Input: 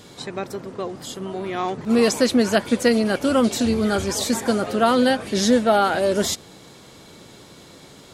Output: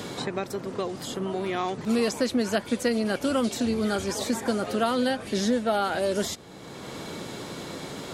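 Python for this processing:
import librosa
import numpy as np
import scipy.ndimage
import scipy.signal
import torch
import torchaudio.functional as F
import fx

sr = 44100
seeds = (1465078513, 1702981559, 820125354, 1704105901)

y = fx.band_squash(x, sr, depth_pct=70)
y = y * 10.0 ** (-6.5 / 20.0)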